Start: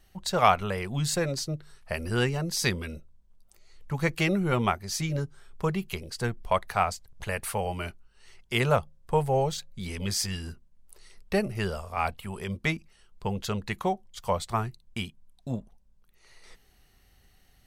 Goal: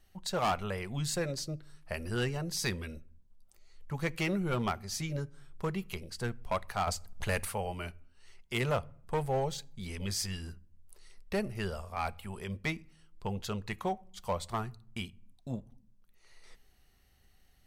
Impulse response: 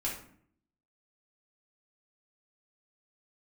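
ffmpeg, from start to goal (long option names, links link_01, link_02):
-filter_complex "[0:a]asettb=1/sr,asplit=3[link_01][link_02][link_03];[link_01]atrim=end=6.874[link_04];[link_02]atrim=start=6.87:end=7.45,asetpts=PTS-STARTPTS,afade=type=in:duration=0.004:curve=qsin,afade=type=out:start_time=0.576:duration=0.004:curve=qsin,acontrast=67[link_05];[link_03]atrim=start=7.446[link_06];[link_04][link_05]acrossfade=duration=0.004:curve1=hsin:curve2=qsin[link_07];[link_07][link_06]acrossfade=duration=0.004:curve1=qsin:curve2=hsin,volume=19dB,asoftclip=hard,volume=-19dB,asplit=2[link_08][link_09];[1:a]atrim=start_sample=2205,lowshelf=frequency=140:gain=11[link_10];[link_09][link_10]afir=irnorm=-1:irlink=0,volume=-23.5dB[link_11];[link_08][link_11]amix=inputs=2:normalize=0,volume=-6dB"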